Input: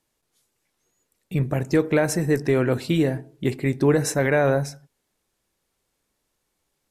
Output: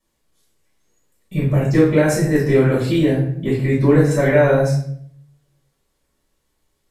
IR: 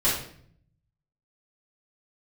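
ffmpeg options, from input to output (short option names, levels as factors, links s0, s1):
-filter_complex "[0:a]asettb=1/sr,asplit=3[s0][s1][s2];[s0]atrim=end=2.974[s3];[s1]atrim=start=2.97:end=4.11,asetpts=PTS-STARTPTS,afade=t=in:d=0.004:c=qsin,afade=t=out:st=1.136:d=0.004:c=qsin,acrossover=split=2800[s4][s5];[s5]acompressor=threshold=0.00794:ratio=4:attack=1:release=60[s6];[s4][s6]amix=inputs=2:normalize=0[s7];[s2]atrim=start=4.106[s8];[s3][s7]acrossfade=d=0.004:c1=hsin:c2=qsin[s9];[s9][s8]acrossfade=d=0.004:c1=qsin:c2=hsin[s10];[1:a]atrim=start_sample=2205[s11];[s10][s11]afir=irnorm=-1:irlink=0,volume=0.355"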